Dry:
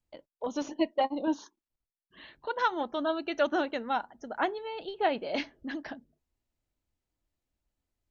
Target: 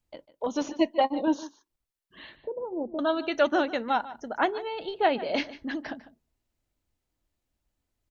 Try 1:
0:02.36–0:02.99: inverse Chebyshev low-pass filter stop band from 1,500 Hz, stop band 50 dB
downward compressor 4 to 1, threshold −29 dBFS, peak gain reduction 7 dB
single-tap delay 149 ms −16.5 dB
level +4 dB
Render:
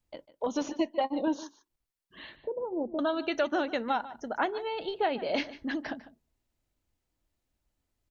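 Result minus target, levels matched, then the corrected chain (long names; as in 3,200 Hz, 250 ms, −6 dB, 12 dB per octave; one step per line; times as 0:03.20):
downward compressor: peak gain reduction +7 dB
0:02.36–0:02.99: inverse Chebyshev low-pass filter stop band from 1,500 Hz, stop band 50 dB
single-tap delay 149 ms −16.5 dB
level +4 dB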